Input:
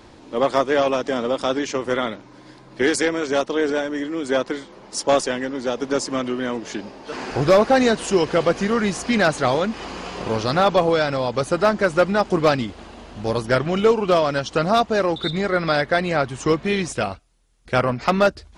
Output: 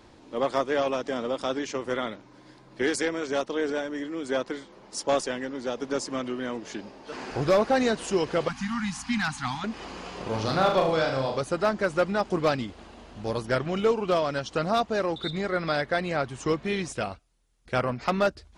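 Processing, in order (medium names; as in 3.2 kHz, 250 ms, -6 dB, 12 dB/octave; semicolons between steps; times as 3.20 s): 8.48–9.64 s: elliptic band-stop 260–820 Hz, stop band 40 dB; 10.29–11.38 s: flutter echo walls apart 6.4 m, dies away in 0.51 s; trim -7 dB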